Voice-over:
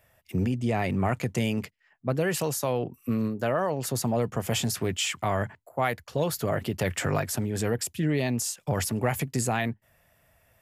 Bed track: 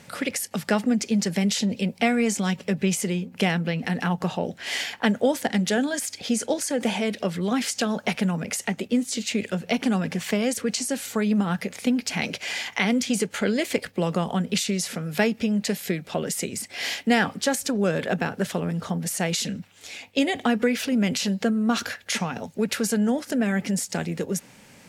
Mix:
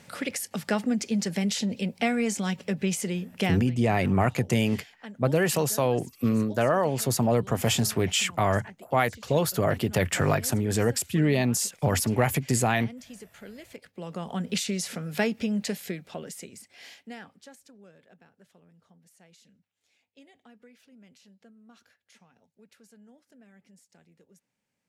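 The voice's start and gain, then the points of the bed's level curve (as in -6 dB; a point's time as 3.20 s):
3.15 s, +3.0 dB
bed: 3.48 s -4 dB
3.70 s -21 dB
13.71 s -21 dB
14.48 s -4 dB
15.62 s -4 dB
18.03 s -32.5 dB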